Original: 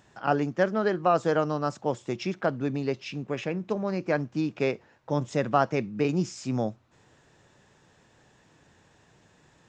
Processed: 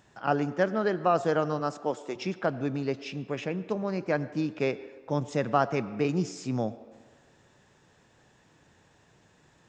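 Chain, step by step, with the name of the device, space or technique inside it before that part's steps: filtered reverb send (on a send: HPF 230 Hz 24 dB/oct + LPF 4400 Hz + reverb RT60 1.4 s, pre-delay 82 ms, DRR 15.5 dB); 1.59–2.15 on the sum: HPF 120 Hz -> 350 Hz 12 dB/oct; gain -1.5 dB

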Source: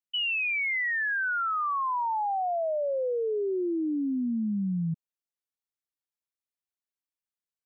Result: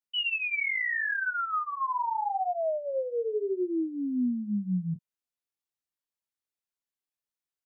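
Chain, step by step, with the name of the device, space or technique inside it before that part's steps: double-tracked vocal (doubler 28 ms -13 dB; chorus 0.79 Hz, delay 18 ms, depth 7.4 ms); gain +1.5 dB

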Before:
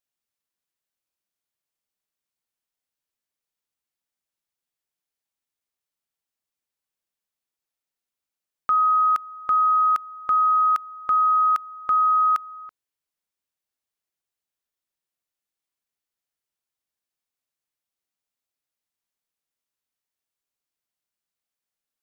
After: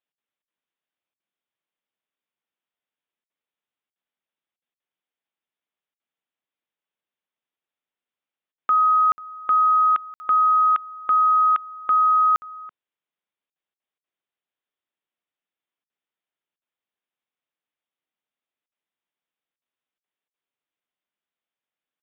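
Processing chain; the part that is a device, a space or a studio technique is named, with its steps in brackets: call with lost packets (HPF 170 Hz; downsampling 8000 Hz; packet loss packets of 60 ms); gain +1.5 dB

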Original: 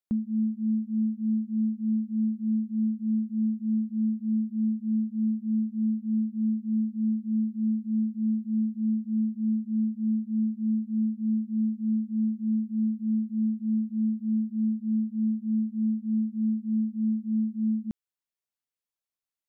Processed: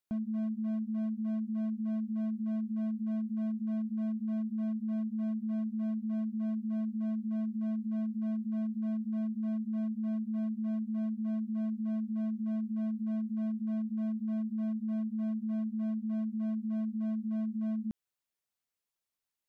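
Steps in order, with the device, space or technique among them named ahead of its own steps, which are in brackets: clipper into limiter (hard clip -24.5 dBFS, distortion -17 dB; limiter -32.5 dBFS, peak gain reduction 8 dB); gain +2 dB

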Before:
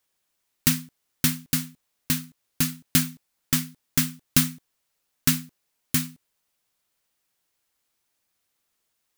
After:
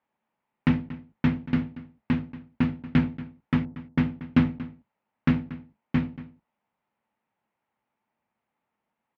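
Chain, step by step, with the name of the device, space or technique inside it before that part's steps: 3.65–4.23 low-pass opened by the level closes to 580 Hz, open at -23 dBFS; sub-octave bass pedal (octaver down 1 oct, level -1 dB; speaker cabinet 75–2300 Hz, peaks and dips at 87 Hz -8 dB, 220 Hz +10 dB, 590 Hz +3 dB, 870 Hz +10 dB, 1600 Hz -3 dB); outdoor echo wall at 40 m, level -16 dB

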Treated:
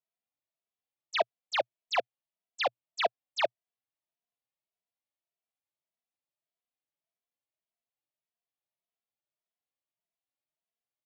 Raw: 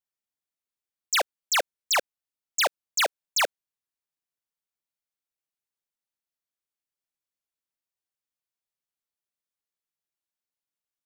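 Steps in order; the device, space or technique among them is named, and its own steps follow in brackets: barber-pole flanger into a guitar amplifier (endless flanger 2.7 ms +1.7 Hz; soft clip -22 dBFS, distortion -17 dB; speaker cabinet 110–3900 Hz, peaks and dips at 120 Hz +7 dB, 670 Hz +10 dB, 1500 Hz -7 dB)

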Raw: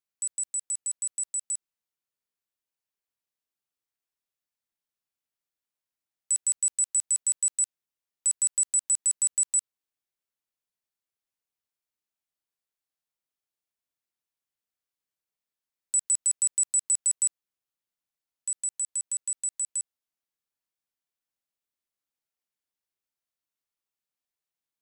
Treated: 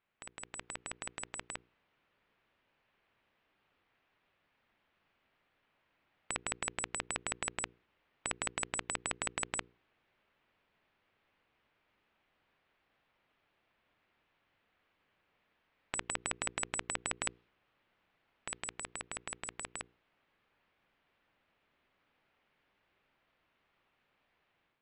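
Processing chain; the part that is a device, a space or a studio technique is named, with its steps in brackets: notches 60/120/180/240/300/360/420/480 Hz; 17.25–18.7 dynamic EQ 4500 Hz, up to +4 dB, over -44 dBFS, Q 0.77; action camera in a waterproof case (LPF 2800 Hz 24 dB/oct; AGC gain up to 7.5 dB; gain +15 dB; AAC 48 kbps 32000 Hz)

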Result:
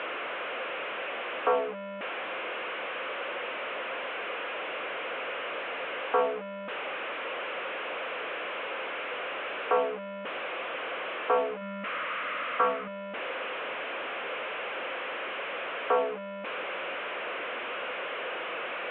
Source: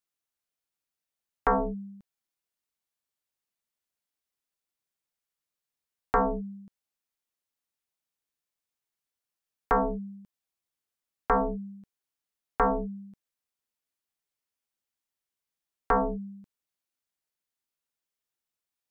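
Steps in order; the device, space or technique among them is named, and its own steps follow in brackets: digital answering machine (BPF 330–3300 Hz; delta modulation 16 kbps, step -26.5 dBFS; speaker cabinet 410–3100 Hz, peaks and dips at 520 Hz +8 dB, 860 Hz -6 dB, 1900 Hz -5 dB); 11.61–12.88 thirty-one-band EQ 200 Hz +6 dB, 400 Hz -12 dB, 800 Hz -7 dB, 1250 Hz +8 dB, 2000 Hz +4 dB

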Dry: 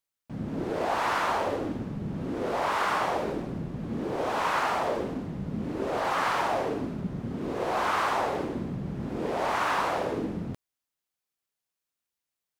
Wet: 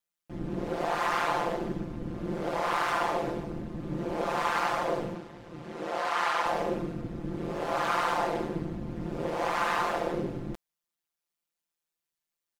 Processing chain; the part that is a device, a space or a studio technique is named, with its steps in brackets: 5.15–6.46 weighting filter A; ring-modulated robot voice (ring modulator 80 Hz; comb 5.8 ms, depth 70%)

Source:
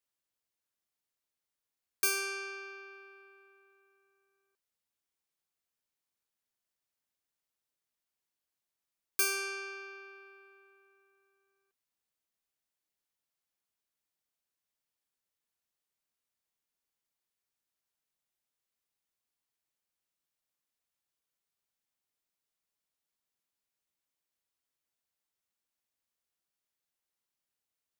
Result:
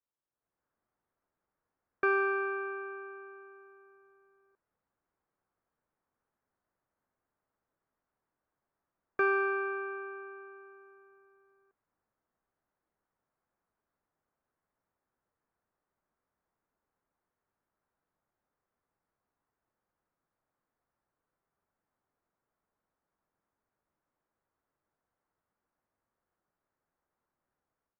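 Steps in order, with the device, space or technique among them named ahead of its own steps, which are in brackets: action camera in a waterproof case (LPF 1500 Hz 24 dB/oct; AGC gain up to 14.5 dB; gain -2.5 dB; AAC 48 kbps 44100 Hz)

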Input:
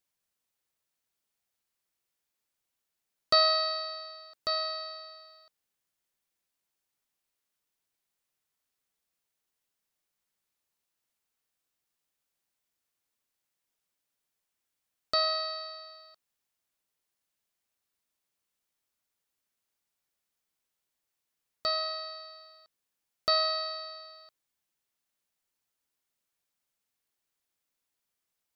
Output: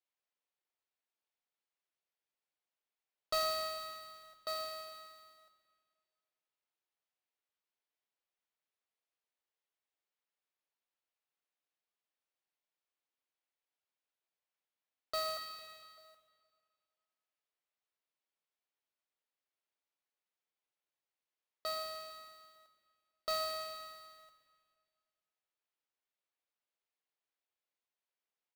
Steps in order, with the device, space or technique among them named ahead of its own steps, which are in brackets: 15.37–15.98 HPF 1200 Hz 24 dB/oct; carbon microphone (BPF 420–3200 Hz; soft clip -21.5 dBFS, distortion -16 dB; modulation noise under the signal 14 dB); bell 1500 Hz -3.5 dB 1.5 oct; feedback echo 0.454 s, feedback 18%, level -22 dB; spring tank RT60 2.2 s, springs 42/59 ms, chirp 75 ms, DRR 10.5 dB; gain -4 dB

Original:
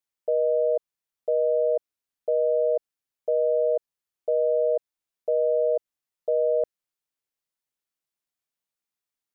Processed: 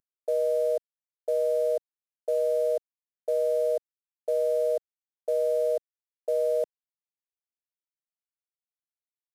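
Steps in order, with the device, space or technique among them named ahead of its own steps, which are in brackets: early wireless headset (HPF 280 Hz 24 dB/oct; CVSD 64 kbps); gain -2.5 dB

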